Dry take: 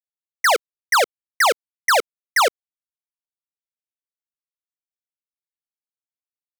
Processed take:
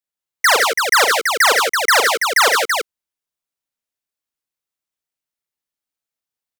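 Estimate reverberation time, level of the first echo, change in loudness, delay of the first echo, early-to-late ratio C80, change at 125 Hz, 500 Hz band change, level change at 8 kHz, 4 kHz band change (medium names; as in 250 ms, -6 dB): no reverb, -7.5 dB, +5.5 dB, 41 ms, no reverb, no reading, +3.5 dB, +8.0 dB, +8.0 dB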